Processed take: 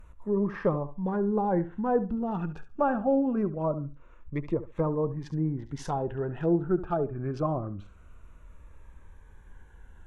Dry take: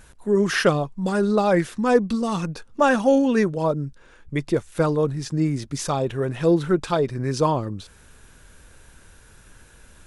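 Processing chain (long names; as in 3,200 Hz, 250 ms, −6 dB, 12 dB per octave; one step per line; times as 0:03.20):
adaptive Wiener filter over 9 samples
flutter between parallel walls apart 12 metres, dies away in 0.29 s
treble cut that deepens with the level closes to 1,000 Hz, closed at −18 dBFS
octave-band graphic EQ 125/250/500/2,000/4,000/8,000 Hz −8/−7/−7/−7/−9/−7 dB
phaser whose notches keep moving one way falling 0.24 Hz
level +2.5 dB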